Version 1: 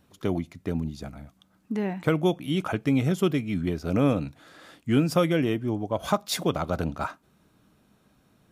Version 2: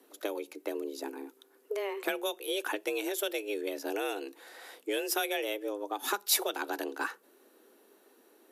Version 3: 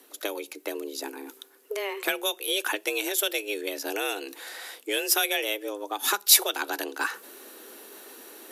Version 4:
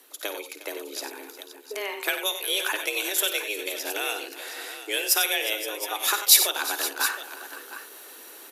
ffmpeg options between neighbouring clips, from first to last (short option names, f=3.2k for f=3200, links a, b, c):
-filter_complex "[0:a]equalizer=f=12k:t=o:w=0.62:g=12,acrossover=split=1500[a][b];[a]acompressor=threshold=-32dB:ratio=6[c];[c][b]amix=inputs=2:normalize=0,afreqshift=200"
-af "areverse,acompressor=mode=upward:threshold=-40dB:ratio=2.5,areverse,tiltshelf=f=1.3k:g=-5,volume=5.5dB"
-filter_complex "[0:a]highpass=f=660:p=1,asplit=2[a][b];[b]aecho=0:1:54|93|358|519|716:0.237|0.316|0.141|0.178|0.237[c];[a][c]amix=inputs=2:normalize=0,volume=1.5dB"